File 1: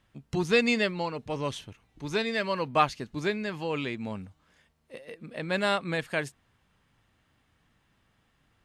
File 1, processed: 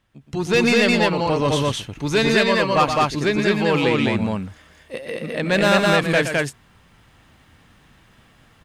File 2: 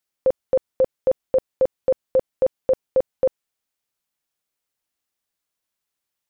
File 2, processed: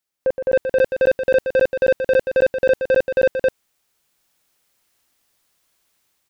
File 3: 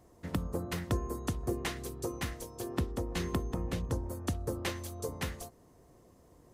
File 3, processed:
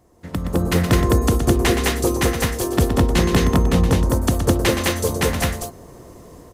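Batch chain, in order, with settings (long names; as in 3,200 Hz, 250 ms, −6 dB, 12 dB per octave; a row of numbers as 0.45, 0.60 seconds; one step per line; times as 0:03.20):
automatic gain control gain up to 13 dB
soft clipping −11.5 dBFS
on a send: loudspeakers that aren't time-aligned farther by 41 metres −8 dB, 72 metres −1 dB
on the sum: loudness normalisation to −19 LKFS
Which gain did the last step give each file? 0.0, −0.5, +3.5 decibels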